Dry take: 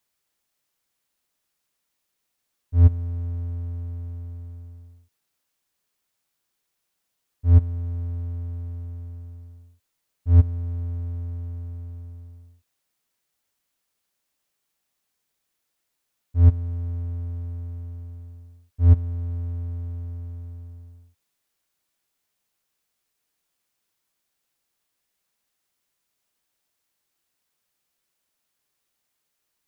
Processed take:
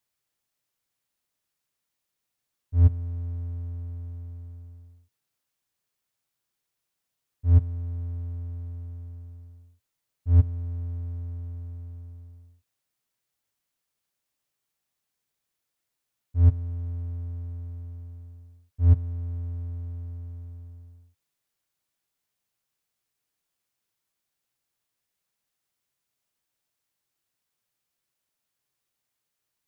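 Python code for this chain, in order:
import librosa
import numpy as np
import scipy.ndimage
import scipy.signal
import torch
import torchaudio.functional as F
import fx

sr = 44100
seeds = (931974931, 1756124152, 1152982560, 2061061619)

y = fx.peak_eq(x, sr, hz=120.0, db=7.0, octaves=0.53)
y = F.gain(torch.from_numpy(y), -5.0).numpy()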